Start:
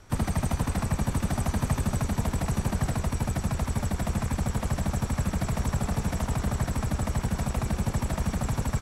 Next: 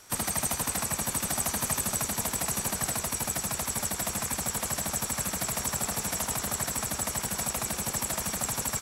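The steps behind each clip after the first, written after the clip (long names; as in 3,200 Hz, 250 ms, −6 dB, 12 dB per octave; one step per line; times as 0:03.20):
RIAA equalisation recording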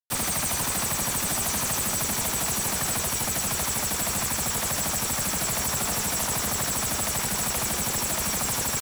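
log-companded quantiser 2 bits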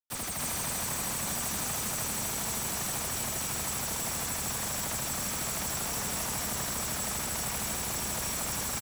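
loudspeakers that aren't time-aligned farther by 27 metres −11 dB, 98 metres −1 dB
level −9 dB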